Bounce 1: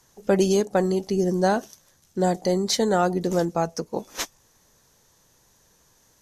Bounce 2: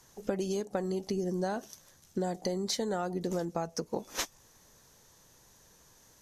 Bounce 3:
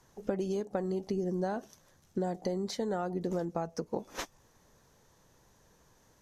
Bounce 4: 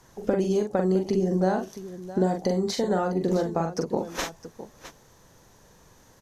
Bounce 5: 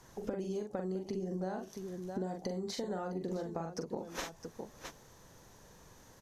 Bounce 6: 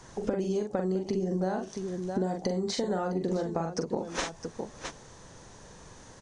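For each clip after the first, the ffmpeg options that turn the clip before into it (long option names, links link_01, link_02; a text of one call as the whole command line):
ffmpeg -i in.wav -af "acompressor=threshold=-29dB:ratio=12" out.wav
ffmpeg -i in.wav -af "highshelf=frequency=2800:gain=-10.5" out.wav
ffmpeg -i in.wav -af "aecho=1:1:43|661:0.596|0.211,volume=7.5dB" out.wav
ffmpeg -i in.wav -af "acompressor=threshold=-36dB:ratio=3,volume=-2.5dB" out.wav
ffmpeg -i in.wav -af "volume=8dB" -ar 32000 -c:a mp2 -b:a 192k out.mp2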